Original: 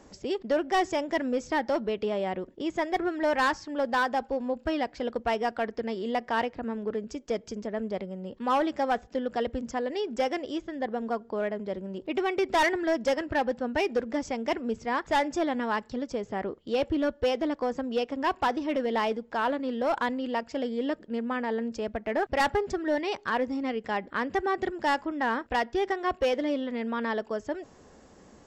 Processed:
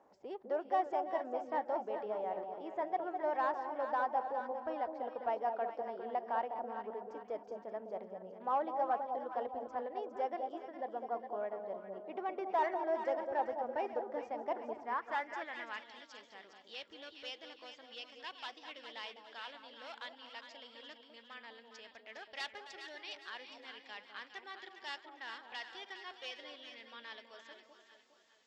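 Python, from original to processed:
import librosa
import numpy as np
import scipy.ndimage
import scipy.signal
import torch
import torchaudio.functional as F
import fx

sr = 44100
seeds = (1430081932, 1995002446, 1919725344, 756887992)

y = fx.reverse_delay(x, sr, ms=235, wet_db=-13.5)
y = fx.echo_alternate(y, sr, ms=204, hz=900.0, feedback_pct=65, wet_db=-5)
y = fx.filter_sweep_bandpass(y, sr, from_hz=800.0, to_hz=3600.0, start_s=14.65, end_s=16.09, q=1.8)
y = y * librosa.db_to_amplitude(-5.5)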